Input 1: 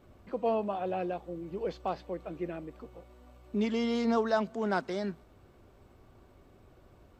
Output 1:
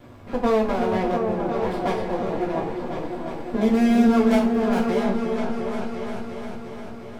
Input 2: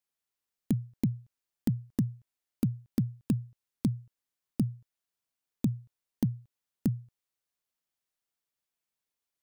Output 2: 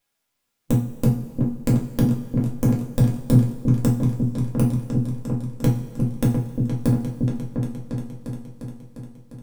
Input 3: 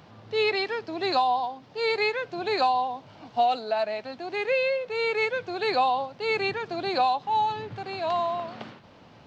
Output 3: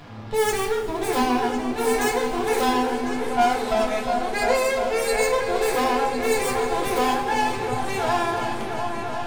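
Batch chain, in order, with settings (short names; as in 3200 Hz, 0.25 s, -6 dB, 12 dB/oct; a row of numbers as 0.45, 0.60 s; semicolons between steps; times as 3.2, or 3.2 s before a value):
tracing distortion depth 0.43 ms; HPF 160 Hz 6 dB/oct; high shelf 4900 Hz -4.5 dB; harmonic-percussive split harmonic +6 dB; low shelf 340 Hz +4 dB; compressor 1.5:1, threshold -39 dBFS; half-wave rectifier; resonator 810 Hz, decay 0.4 s, mix 70%; repeats that get brighter 0.351 s, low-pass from 400 Hz, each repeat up 2 oct, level -3 dB; two-slope reverb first 0.3 s, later 2.5 s, from -18 dB, DRR -1.5 dB; match loudness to -23 LUFS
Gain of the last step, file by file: +20.0, +22.0, +16.0 dB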